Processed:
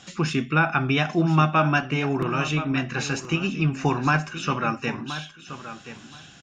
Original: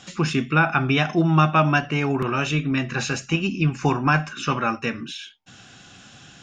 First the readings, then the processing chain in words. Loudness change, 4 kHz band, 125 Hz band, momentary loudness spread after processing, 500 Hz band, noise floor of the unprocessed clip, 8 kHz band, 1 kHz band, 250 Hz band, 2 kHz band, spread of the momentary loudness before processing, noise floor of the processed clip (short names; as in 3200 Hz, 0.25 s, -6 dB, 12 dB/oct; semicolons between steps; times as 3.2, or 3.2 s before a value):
-2.0 dB, -2.0 dB, -2.0 dB, 18 LU, -2.0 dB, -48 dBFS, -2.0 dB, -2.0 dB, -2.0 dB, -1.5 dB, 10 LU, -47 dBFS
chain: feedback echo 1.025 s, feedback 16%, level -12.5 dB; gain -2 dB